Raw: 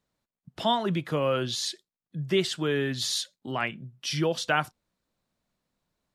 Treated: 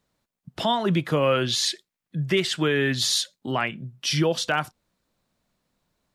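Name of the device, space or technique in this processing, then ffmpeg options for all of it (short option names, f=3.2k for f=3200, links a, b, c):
clipper into limiter: -filter_complex "[0:a]asettb=1/sr,asplit=3[a][b][c];[a]atrim=end=1.234[d];[b]atrim=start=1.23:end=2.95,asetpts=PTS-STARTPTS,afade=t=in:d=0.004:c=qsin,afade=t=out:st=1.716:d=0.004:c=qsin,equalizer=f=2.1k:w=1.5:g=5.5[e];[c]atrim=start=2.946[f];[d][e]acrossfade=d=0.004:c1=hsin:c2=qsin[g];[g][f]acrossfade=d=0.004:c1=qsin:c2=hsin,asoftclip=type=hard:threshold=-12.5dB,alimiter=limit=-18dB:level=0:latency=1:release=216,volume=6dB"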